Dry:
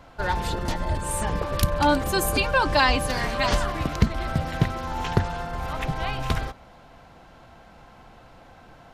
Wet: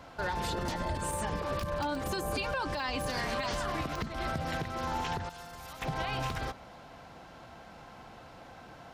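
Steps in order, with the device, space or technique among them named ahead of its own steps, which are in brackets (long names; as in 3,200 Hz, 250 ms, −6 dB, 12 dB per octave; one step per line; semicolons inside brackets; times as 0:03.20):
broadcast voice chain (high-pass filter 92 Hz 6 dB per octave; de-essing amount 60%; downward compressor 4 to 1, threshold −28 dBFS, peak gain reduction 11.5 dB; parametric band 5,300 Hz +2.5 dB 0.68 octaves; brickwall limiter −24 dBFS, peak gain reduction 10.5 dB)
0:05.29–0:05.82: first-order pre-emphasis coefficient 0.8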